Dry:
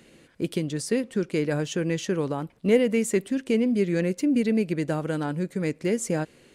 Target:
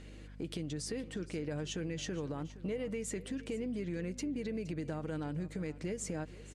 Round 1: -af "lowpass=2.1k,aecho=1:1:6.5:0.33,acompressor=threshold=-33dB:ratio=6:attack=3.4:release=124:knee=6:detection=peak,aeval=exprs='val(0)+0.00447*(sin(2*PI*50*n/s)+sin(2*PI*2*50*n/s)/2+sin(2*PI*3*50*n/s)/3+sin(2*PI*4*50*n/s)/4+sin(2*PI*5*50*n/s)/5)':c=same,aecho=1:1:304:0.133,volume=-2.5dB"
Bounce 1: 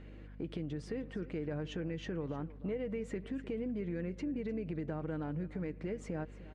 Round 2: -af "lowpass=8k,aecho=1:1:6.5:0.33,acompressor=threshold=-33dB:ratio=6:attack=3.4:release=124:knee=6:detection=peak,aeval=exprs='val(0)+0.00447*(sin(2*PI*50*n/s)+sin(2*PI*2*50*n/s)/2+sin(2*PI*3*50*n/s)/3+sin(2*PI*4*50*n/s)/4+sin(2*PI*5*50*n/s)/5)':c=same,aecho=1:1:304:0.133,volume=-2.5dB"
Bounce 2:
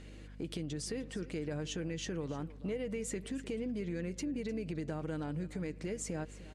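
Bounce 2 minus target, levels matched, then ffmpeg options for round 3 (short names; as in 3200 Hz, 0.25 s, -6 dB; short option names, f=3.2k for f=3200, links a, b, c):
echo 0.164 s early
-af "lowpass=8k,aecho=1:1:6.5:0.33,acompressor=threshold=-33dB:ratio=6:attack=3.4:release=124:knee=6:detection=peak,aeval=exprs='val(0)+0.00447*(sin(2*PI*50*n/s)+sin(2*PI*2*50*n/s)/2+sin(2*PI*3*50*n/s)/3+sin(2*PI*4*50*n/s)/4+sin(2*PI*5*50*n/s)/5)':c=same,aecho=1:1:468:0.133,volume=-2.5dB"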